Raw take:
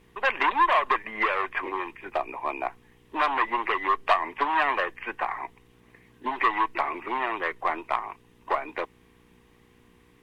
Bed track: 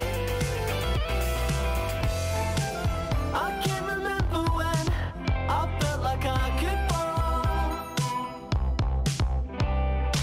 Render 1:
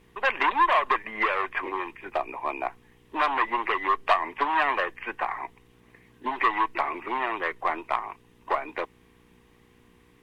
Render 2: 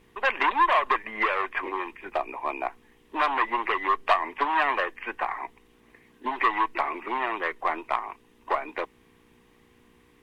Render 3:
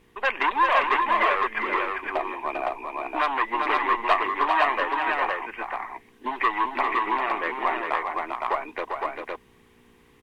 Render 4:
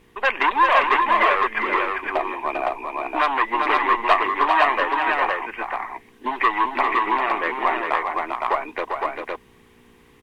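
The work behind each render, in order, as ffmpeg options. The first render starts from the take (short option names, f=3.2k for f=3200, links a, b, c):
-af anull
-af "bandreject=f=60:t=h:w=4,bandreject=f=120:t=h:w=4,bandreject=f=180:t=h:w=4"
-af "aecho=1:1:397|512:0.531|0.708"
-af "volume=4dB"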